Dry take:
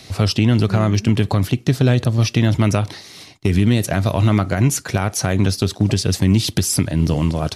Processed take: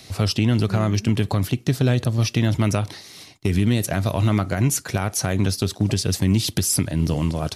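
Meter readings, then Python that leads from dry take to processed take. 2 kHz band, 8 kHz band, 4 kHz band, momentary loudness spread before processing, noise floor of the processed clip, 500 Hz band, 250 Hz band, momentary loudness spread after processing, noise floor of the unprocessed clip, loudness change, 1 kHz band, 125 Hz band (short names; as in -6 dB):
-3.5 dB, -1.0 dB, -3.0 dB, 4 LU, -45 dBFS, -4.0 dB, -4.0 dB, 4 LU, -42 dBFS, -3.5 dB, -4.0 dB, -4.0 dB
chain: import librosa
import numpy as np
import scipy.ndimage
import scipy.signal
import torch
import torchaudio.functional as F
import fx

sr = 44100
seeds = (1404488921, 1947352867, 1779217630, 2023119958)

y = fx.high_shelf(x, sr, hz=9000.0, db=7.0)
y = F.gain(torch.from_numpy(y), -4.0).numpy()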